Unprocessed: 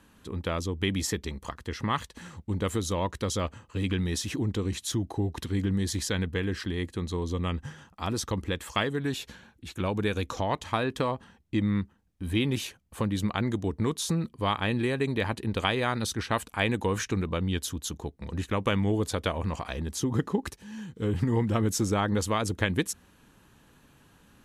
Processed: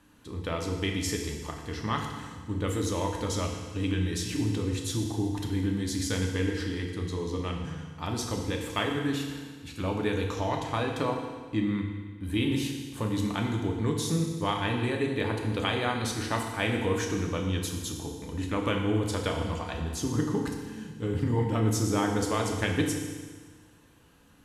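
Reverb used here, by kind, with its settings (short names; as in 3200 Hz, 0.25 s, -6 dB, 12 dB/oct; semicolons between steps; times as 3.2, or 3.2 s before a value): FDN reverb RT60 1.5 s, low-frequency decay 1.1×, high-frequency decay 1×, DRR 0.5 dB; gain -3.5 dB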